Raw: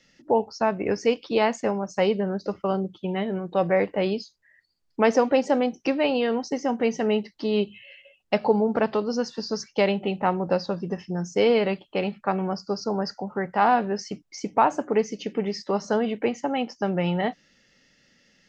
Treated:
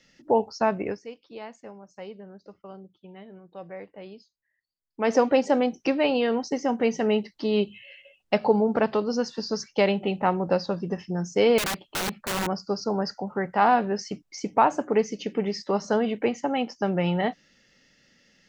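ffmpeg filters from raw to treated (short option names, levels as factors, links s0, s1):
-filter_complex "[0:a]asettb=1/sr,asplit=3[s0][s1][s2];[s0]atrim=end=11.584[s3];[s1]atrim=start=11.58:end=12.47,asetpts=PTS-STARTPTS,afade=t=in:d=0.004:c=qsin,afade=t=out:st=0.886:d=0.004:c=qsin,aeval=exprs='(mod(14.1*val(0)+1,2)-1)/14.1':c=same[s4];[s2]atrim=start=12.466[s5];[s3][s4]acrossfade=d=0.004:c1=hsin:c2=qsin[s6];[s6][s5]acrossfade=d=0.004:c1=qsin:c2=hsin,asplit=3[s7][s8][s9];[s7]atrim=end=1,asetpts=PTS-STARTPTS,afade=t=out:st=0.78:d=0.22:silence=0.125893[s10];[s8]atrim=start=1:end=4.94,asetpts=PTS-STARTPTS,volume=0.126[s11];[s9]atrim=start=4.94,asetpts=PTS-STARTPTS,afade=t=in:d=0.22:silence=0.125893[s12];[s10][s11][s12]concat=n=3:v=0:a=1"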